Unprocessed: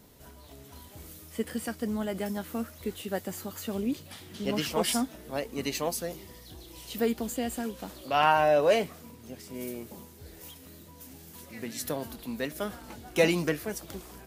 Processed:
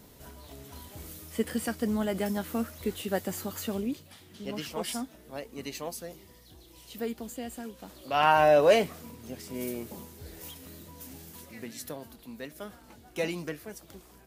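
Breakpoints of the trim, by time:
3.63 s +2.5 dB
4.11 s -6.5 dB
7.80 s -6.5 dB
8.43 s +2.5 dB
11.19 s +2.5 dB
12.01 s -8 dB

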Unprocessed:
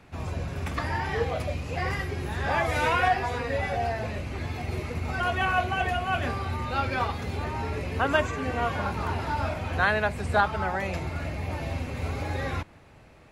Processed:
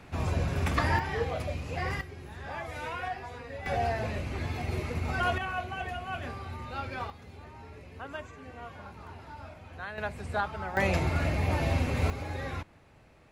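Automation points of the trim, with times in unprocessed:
+3 dB
from 0.99 s -3.5 dB
from 2.01 s -12.5 dB
from 3.66 s -1 dB
from 5.38 s -9 dB
from 7.10 s -16.5 dB
from 9.98 s -8 dB
from 10.77 s +4 dB
from 12.10 s -5.5 dB

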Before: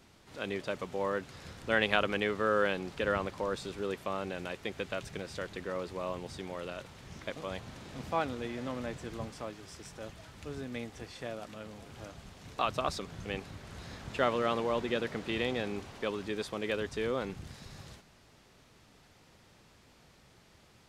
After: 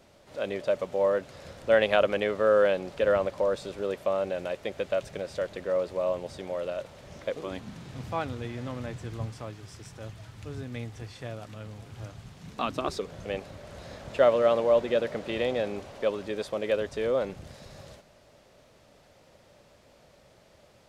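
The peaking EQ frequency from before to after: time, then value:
peaking EQ +13.5 dB 0.51 oct
7.24 s 580 Hz
7.96 s 110 Hz
12.21 s 110 Hz
13.15 s 580 Hz

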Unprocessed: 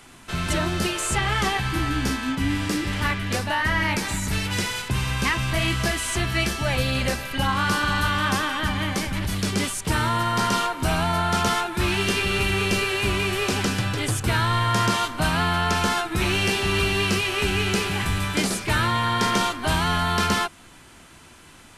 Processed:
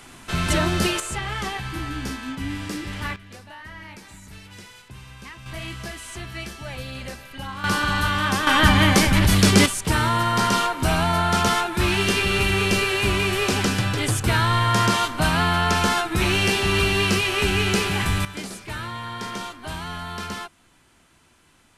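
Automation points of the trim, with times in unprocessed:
+3 dB
from 1.00 s -5.5 dB
from 3.16 s -17.5 dB
from 5.46 s -10.5 dB
from 7.64 s +0.5 dB
from 8.47 s +9.5 dB
from 9.66 s +2 dB
from 18.25 s -10 dB

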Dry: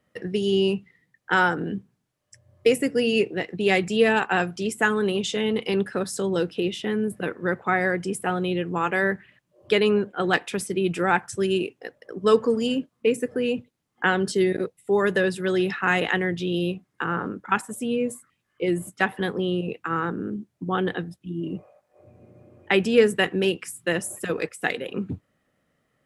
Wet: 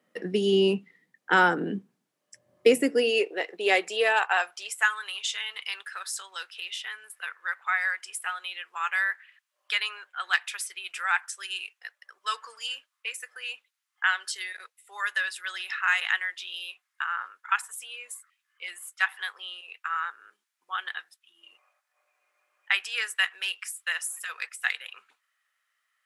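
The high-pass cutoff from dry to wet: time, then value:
high-pass 24 dB/octave
2.78 s 190 Hz
3.20 s 430 Hz
3.74 s 430 Hz
5.01 s 1.2 kHz

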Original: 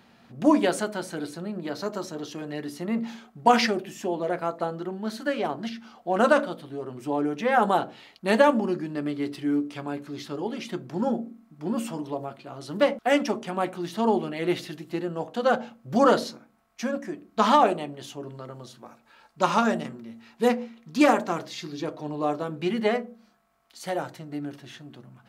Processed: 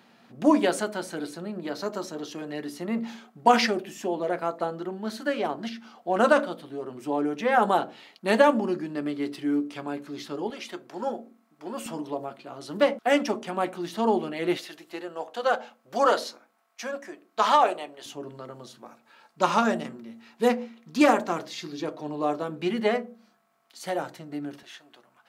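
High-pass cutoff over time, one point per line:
180 Hz
from 10.50 s 450 Hz
from 11.86 s 190 Hz
from 14.57 s 510 Hz
from 18.06 s 170 Hz
from 24.63 s 630 Hz

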